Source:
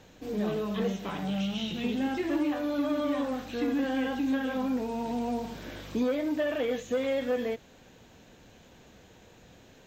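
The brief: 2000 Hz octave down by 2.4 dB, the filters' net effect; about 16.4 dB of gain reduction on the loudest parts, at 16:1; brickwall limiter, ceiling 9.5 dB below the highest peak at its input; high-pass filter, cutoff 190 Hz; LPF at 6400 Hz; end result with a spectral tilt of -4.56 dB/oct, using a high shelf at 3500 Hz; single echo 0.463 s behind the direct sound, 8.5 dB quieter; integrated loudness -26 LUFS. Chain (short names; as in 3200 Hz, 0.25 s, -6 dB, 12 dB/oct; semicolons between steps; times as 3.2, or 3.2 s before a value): HPF 190 Hz; LPF 6400 Hz; bell 2000 Hz -5 dB; high shelf 3500 Hz +6.5 dB; compressor 16:1, threshold -42 dBFS; limiter -42 dBFS; echo 0.463 s -8.5 dB; gain +23.5 dB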